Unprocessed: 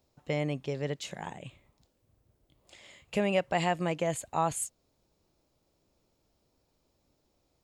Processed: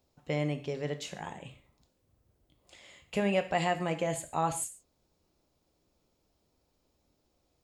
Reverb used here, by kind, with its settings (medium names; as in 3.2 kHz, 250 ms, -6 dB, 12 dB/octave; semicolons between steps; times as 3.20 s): gated-style reverb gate 170 ms falling, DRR 7 dB; trim -1.5 dB